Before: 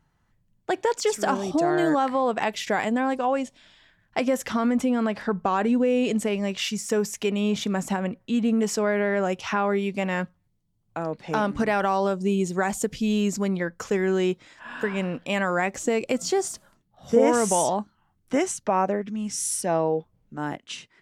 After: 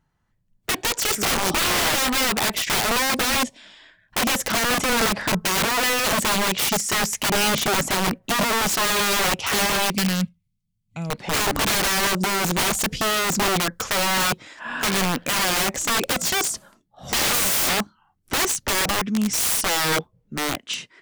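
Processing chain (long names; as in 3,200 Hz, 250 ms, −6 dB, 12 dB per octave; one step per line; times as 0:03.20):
gain on a spectral selection 0:09.96–0:11.10, 240–2,000 Hz −17 dB
wrap-around overflow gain 24 dB
noise reduction from a noise print of the clip's start 11 dB
level +8 dB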